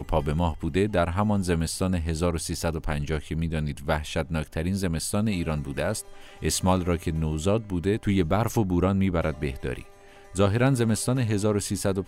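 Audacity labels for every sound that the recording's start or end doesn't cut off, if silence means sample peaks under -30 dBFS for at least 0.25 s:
6.420000	9.810000	sound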